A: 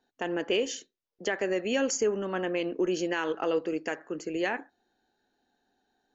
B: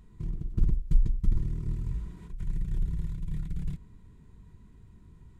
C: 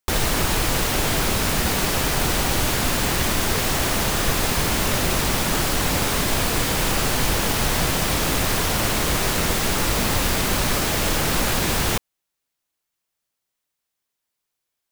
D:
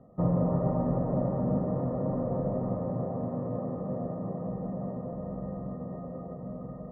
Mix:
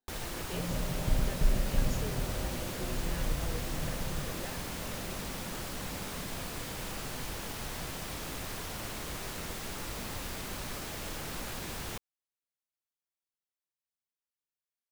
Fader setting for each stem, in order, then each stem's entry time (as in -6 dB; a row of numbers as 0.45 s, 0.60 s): -17.5 dB, -4.5 dB, -18.0 dB, -12.0 dB; 0.00 s, 0.50 s, 0.00 s, 0.35 s